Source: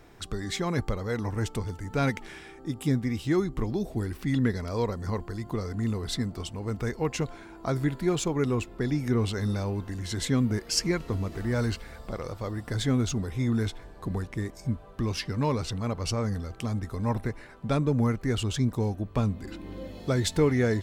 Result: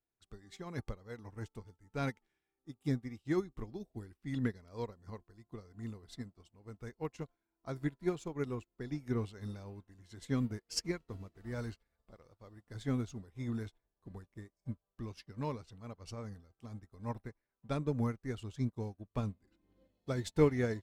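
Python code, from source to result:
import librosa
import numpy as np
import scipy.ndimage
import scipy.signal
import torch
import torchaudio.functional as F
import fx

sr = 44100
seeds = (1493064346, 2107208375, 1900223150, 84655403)

y = fx.upward_expand(x, sr, threshold_db=-45.0, expansion=2.5)
y = y * librosa.db_to_amplitude(-2.5)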